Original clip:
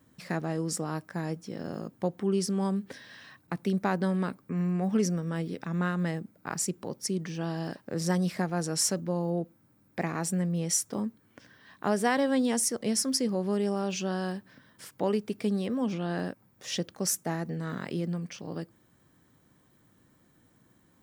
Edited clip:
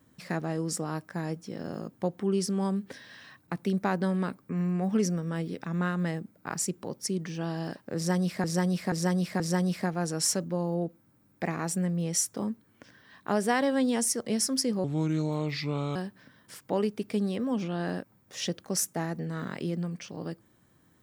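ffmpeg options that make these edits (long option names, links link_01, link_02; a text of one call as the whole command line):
ffmpeg -i in.wav -filter_complex "[0:a]asplit=6[link_01][link_02][link_03][link_04][link_05][link_06];[link_01]atrim=end=8.442[link_07];[link_02]atrim=start=7.958:end=8.442[link_08];[link_03]atrim=start=7.958:end=8.442[link_09];[link_04]atrim=start=7.958:end=13.404[link_10];[link_05]atrim=start=13.4:end=14.26,asetpts=PTS-STARTPTS,asetrate=33957,aresample=44100[link_11];[link_06]atrim=start=14.256[link_12];[link_07][link_08]acrossfade=duration=0.004:curve1=hsin:curve2=hsin[link_13];[link_13][link_09]acrossfade=duration=0.004:curve1=hsin:curve2=hsin[link_14];[link_14][link_10]acrossfade=duration=0.004:curve1=hsin:curve2=hsin[link_15];[link_15][link_11]acrossfade=duration=0.004:curve1=hsin:curve2=hsin[link_16];[link_16][link_12]acrossfade=duration=0.004:curve1=hsin:curve2=hsin" out.wav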